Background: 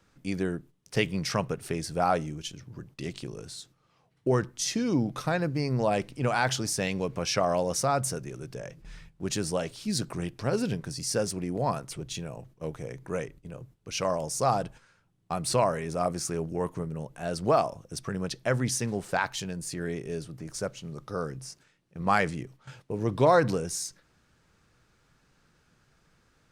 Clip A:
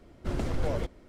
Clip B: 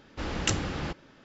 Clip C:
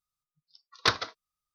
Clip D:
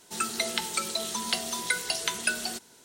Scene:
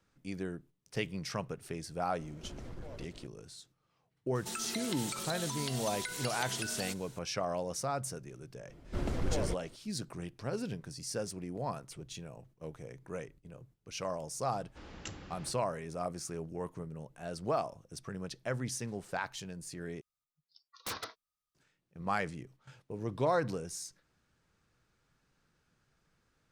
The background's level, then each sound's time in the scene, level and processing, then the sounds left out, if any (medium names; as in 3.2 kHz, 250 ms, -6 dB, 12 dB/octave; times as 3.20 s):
background -9 dB
2.19 s: add A + compression 4:1, threshold -45 dBFS
4.35 s: add D -1.5 dB + compression, threshold -34 dBFS
8.68 s: add A -3.5 dB
14.58 s: add B -17 dB
20.01 s: replace with C -5 dB + wavefolder -27 dBFS